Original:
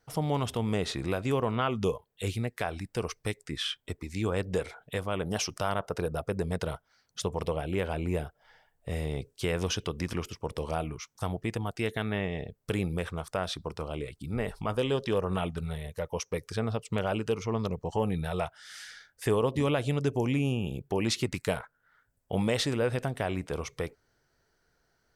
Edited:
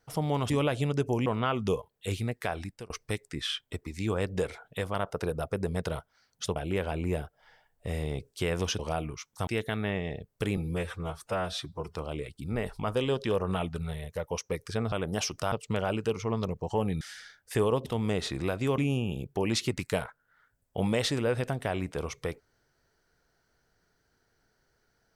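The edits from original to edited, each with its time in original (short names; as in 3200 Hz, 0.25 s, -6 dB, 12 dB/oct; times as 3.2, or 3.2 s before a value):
0.5–1.42 swap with 19.57–20.33
2.8–3.06 fade out
5.1–5.7 move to 16.74
7.32–7.58 cut
9.81–10.61 cut
11.29–11.75 cut
12.85–13.77 stretch 1.5×
18.23–18.72 cut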